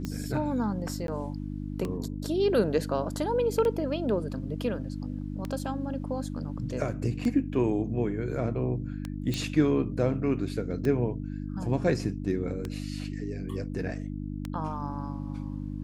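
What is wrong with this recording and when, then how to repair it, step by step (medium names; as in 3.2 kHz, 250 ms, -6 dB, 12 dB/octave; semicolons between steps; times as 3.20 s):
hum 50 Hz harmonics 6 -35 dBFS
tick 33 1/3 rpm -19 dBFS
1.07–1.08 s: dropout 12 ms
9.34 s: pop -17 dBFS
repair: de-click; de-hum 50 Hz, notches 6; interpolate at 1.07 s, 12 ms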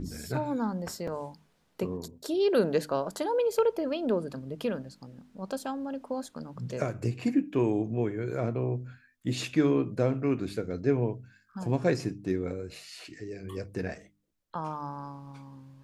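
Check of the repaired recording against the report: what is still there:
nothing left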